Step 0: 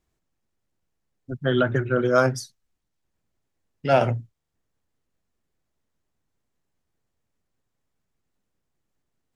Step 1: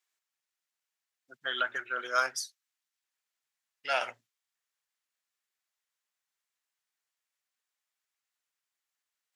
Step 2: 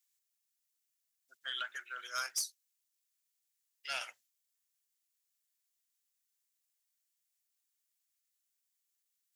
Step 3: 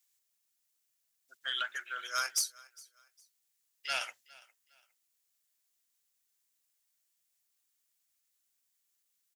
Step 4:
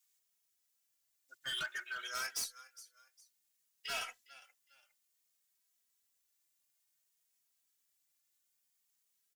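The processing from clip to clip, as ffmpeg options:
-af "highpass=1.5k"
-af "aderivative,aeval=exprs='0.0708*sin(PI/2*1.58*val(0)/0.0708)':c=same,volume=-4dB"
-af "aecho=1:1:408|816:0.0708|0.0205,volume=4.5dB"
-filter_complex "[0:a]volume=34dB,asoftclip=hard,volume=-34dB,asplit=2[a][b];[b]adelay=2.8,afreqshift=0.57[c];[a][c]amix=inputs=2:normalize=1,volume=2dB"

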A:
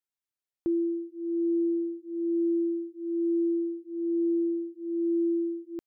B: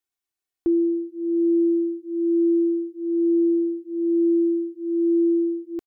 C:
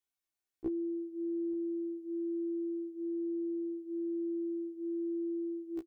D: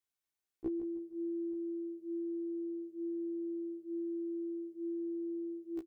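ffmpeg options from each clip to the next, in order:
-af "aecho=1:1:2.7:0.65,volume=3dB"
-af "acompressor=threshold=-27dB:ratio=6,aecho=1:1:874:0.075,afftfilt=real='re*1.73*eq(mod(b,3),0)':imag='im*1.73*eq(mod(b,3),0)':win_size=2048:overlap=0.75,volume=-2dB"
-af "aecho=1:1:156|312|468|624:0.282|0.0958|0.0326|0.0111,volume=-1.5dB"

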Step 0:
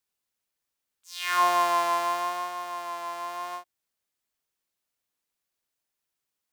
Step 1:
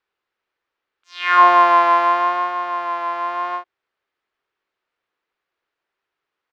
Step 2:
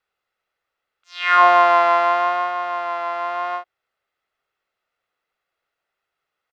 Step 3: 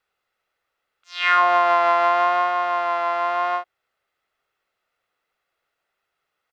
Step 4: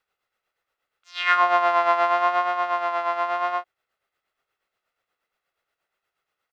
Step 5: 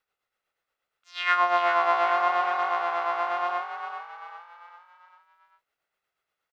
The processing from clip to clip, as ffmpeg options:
-af "firequalizer=gain_entry='entry(230,0);entry(380,12);entry(610,7);entry(1300,12);entry(10000,-28)':delay=0.05:min_phase=1,volume=1.5dB"
-af "aecho=1:1:1.5:0.44"
-af "acompressor=threshold=-16dB:ratio=6,volume=2.5dB"
-af "tremolo=f=8.4:d=0.55"
-filter_complex "[0:a]asplit=6[a][b][c][d][e][f];[b]adelay=396,afreqshift=51,volume=-8dB[g];[c]adelay=792,afreqshift=102,volume=-14.6dB[h];[d]adelay=1188,afreqshift=153,volume=-21.1dB[i];[e]adelay=1584,afreqshift=204,volume=-27.7dB[j];[f]adelay=1980,afreqshift=255,volume=-34.2dB[k];[a][g][h][i][j][k]amix=inputs=6:normalize=0,volume=-3.5dB"

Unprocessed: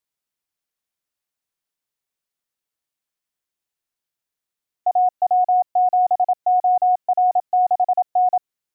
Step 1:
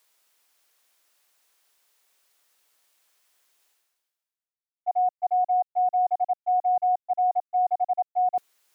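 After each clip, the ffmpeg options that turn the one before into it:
-af "agate=range=-15dB:threshold=-18dB:ratio=16:detection=peak,highpass=460,areverse,acompressor=mode=upward:threshold=-33dB:ratio=2.5,areverse,volume=-5dB"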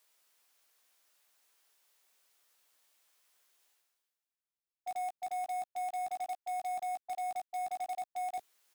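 -filter_complex "[0:a]asplit=2[a][b];[b]aeval=exprs='(mod(35.5*val(0)+1,2)-1)/35.5':c=same,volume=-4dB[c];[a][c]amix=inputs=2:normalize=0,asplit=2[d][e];[e]adelay=16,volume=-8dB[f];[d][f]amix=inputs=2:normalize=0,asoftclip=type=tanh:threshold=-23.5dB,volume=-9dB"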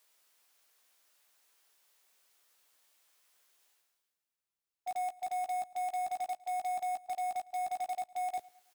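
-af "aecho=1:1:107|214|321:0.0708|0.0326|0.015,volume=1.5dB"

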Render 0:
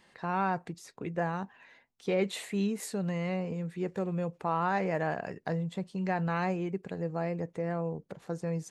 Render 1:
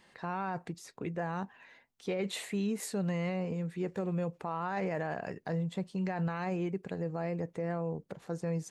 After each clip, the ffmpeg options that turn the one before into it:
-af "alimiter=level_in=1.5dB:limit=-24dB:level=0:latency=1:release=18,volume=-1.5dB"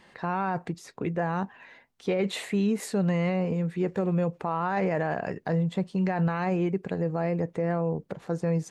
-af "highshelf=f=4.4k:g=-7.5,volume=7.5dB"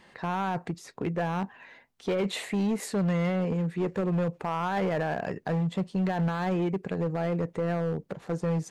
-af "asoftclip=type=hard:threshold=-23dB"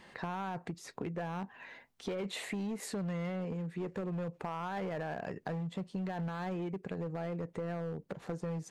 -af "acompressor=threshold=-37dB:ratio=4"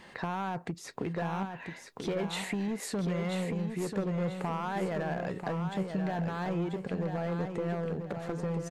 -af "aecho=1:1:988|1976|2964|3952:0.473|0.156|0.0515|0.017,volume=4dB"

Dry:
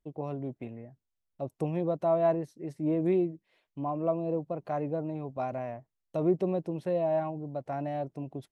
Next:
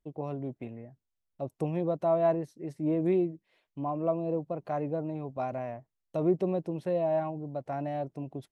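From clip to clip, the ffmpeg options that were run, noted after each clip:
-af anull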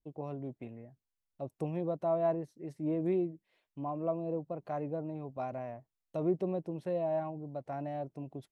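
-af "adynamicequalizer=threshold=0.00708:dfrequency=1500:dqfactor=0.7:tfrequency=1500:tqfactor=0.7:attack=5:release=100:ratio=0.375:range=2:mode=cutabove:tftype=highshelf,volume=-4.5dB"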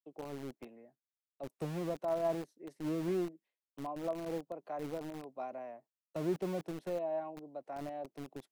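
-filter_complex "[0:a]agate=range=-33dB:threshold=-53dB:ratio=3:detection=peak,acrossover=split=220|360|840[a][b][c][d];[a]acrusher=bits=6:mix=0:aa=0.000001[e];[e][b][c][d]amix=inputs=4:normalize=0,volume=-3.5dB"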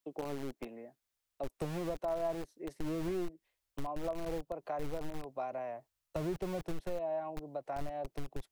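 -af "asubboost=boost=12:cutoff=66,acompressor=threshold=-46dB:ratio=2.5,volume=9dB"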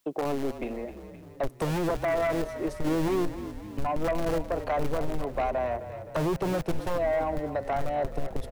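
-filter_complex "[0:a]aeval=exprs='0.0708*sin(PI/2*2.82*val(0)/0.0708)':c=same,asplit=8[a][b][c][d][e][f][g][h];[b]adelay=260,afreqshift=-33,volume=-12dB[i];[c]adelay=520,afreqshift=-66,volume=-16.3dB[j];[d]adelay=780,afreqshift=-99,volume=-20.6dB[k];[e]adelay=1040,afreqshift=-132,volume=-24.9dB[l];[f]adelay=1300,afreqshift=-165,volume=-29.2dB[m];[g]adelay=1560,afreqshift=-198,volume=-33.5dB[n];[h]adelay=1820,afreqshift=-231,volume=-37.8dB[o];[a][i][j][k][l][m][n][o]amix=inputs=8:normalize=0"

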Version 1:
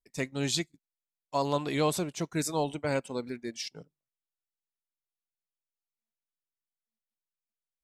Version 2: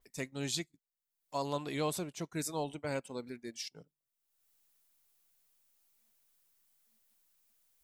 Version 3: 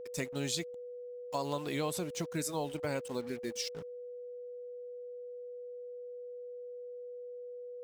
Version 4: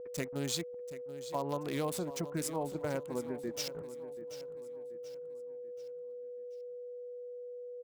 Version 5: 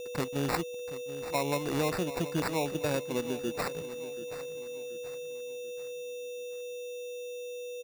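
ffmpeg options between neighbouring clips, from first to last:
-af "highshelf=f=7.9k:g=10.5,acompressor=mode=upward:threshold=-47dB:ratio=2.5,adynamicequalizer=threshold=0.00398:dfrequency=4600:dqfactor=0.7:tfrequency=4600:tqfactor=0.7:attack=5:release=100:ratio=0.375:range=2.5:mode=cutabove:tftype=highshelf,volume=-7dB"
-af "acrusher=bits=8:mix=0:aa=0.5,acompressor=threshold=-40dB:ratio=2.5,aeval=exprs='val(0)+0.00398*sin(2*PI*490*n/s)':c=same,volume=6dB"
-filter_complex "[0:a]acrossover=split=1800[a][b];[b]aeval=exprs='val(0)*gte(abs(val(0)),0.0112)':c=same[c];[a][c]amix=inputs=2:normalize=0,aecho=1:1:733|1466|2199|2932:0.2|0.0858|0.0369|0.0159"
-af "acrusher=samples=14:mix=1:aa=0.000001,volume=5dB"

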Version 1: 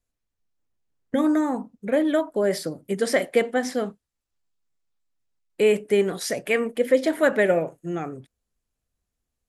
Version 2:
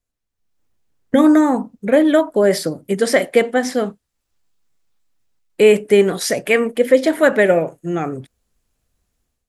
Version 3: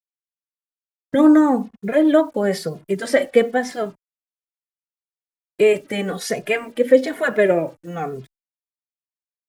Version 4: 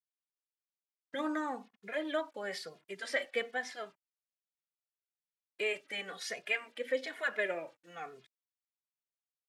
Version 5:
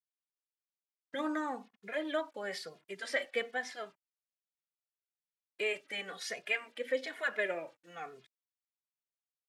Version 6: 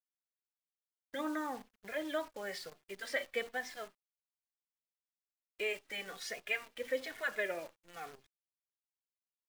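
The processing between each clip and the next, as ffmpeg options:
-af "dynaudnorm=f=330:g=3:m=11.5dB"
-filter_complex "[0:a]highshelf=f=4.8k:g=-6,acrusher=bits=7:mix=0:aa=0.5,asplit=2[a][b];[b]adelay=2.4,afreqshift=-1.1[c];[a][c]amix=inputs=2:normalize=1"
-af "bandpass=f=2.8k:t=q:w=0.76:csg=0,volume=-8dB"
-af anull
-af "acrusher=bits=9:dc=4:mix=0:aa=0.000001,volume=-2.5dB"

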